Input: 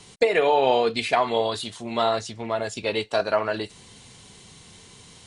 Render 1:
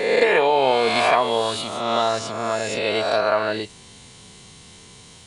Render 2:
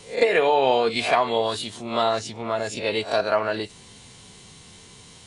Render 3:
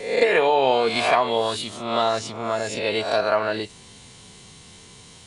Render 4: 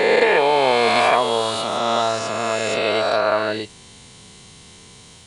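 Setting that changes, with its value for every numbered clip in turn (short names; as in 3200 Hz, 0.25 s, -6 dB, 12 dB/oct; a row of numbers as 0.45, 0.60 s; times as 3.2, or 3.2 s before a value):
spectral swells, rising 60 dB in: 1.37, 0.31, 0.65, 3.18 s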